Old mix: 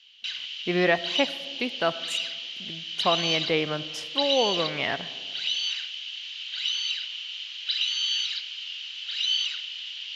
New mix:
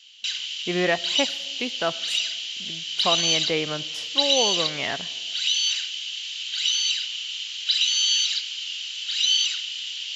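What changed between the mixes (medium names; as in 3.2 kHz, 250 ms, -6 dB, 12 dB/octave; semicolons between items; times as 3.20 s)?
speech: send -6.0 dB; background: remove distance through air 210 m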